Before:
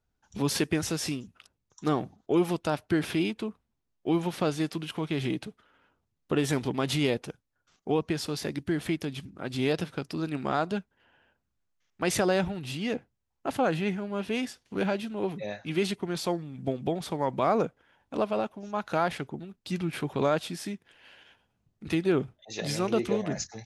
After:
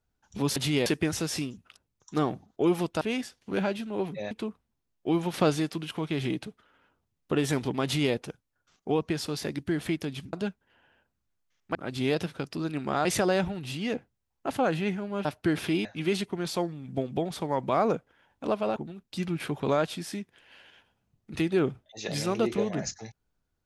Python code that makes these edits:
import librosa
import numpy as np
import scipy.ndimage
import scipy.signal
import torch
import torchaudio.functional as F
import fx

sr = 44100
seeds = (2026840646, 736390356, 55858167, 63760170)

y = fx.edit(x, sr, fx.swap(start_s=2.71, length_s=0.6, other_s=14.25, other_length_s=1.3),
    fx.clip_gain(start_s=4.34, length_s=0.26, db=4.0),
    fx.duplicate(start_s=6.84, length_s=0.3, to_s=0.56),
    fx.move(start_s=9.33, length_s=1.3, to_s=12.05),
    fx.cut(start_s=18.46, length_s=0.83), tone=tone)